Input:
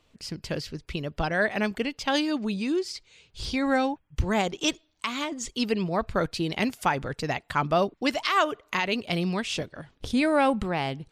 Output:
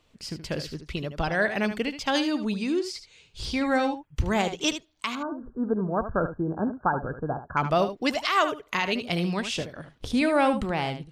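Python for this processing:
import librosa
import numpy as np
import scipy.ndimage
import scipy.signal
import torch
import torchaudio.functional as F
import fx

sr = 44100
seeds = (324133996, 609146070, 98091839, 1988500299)

y = fx.brickwall_lowpass(x, sr, high_hz=1700.0, at=(5.15, 7.57))
y = y + 10.0 ** (-10.5 / 20.0) * np.pad(y, (int(75 * sr / 1000.0), 0))[:len(y)]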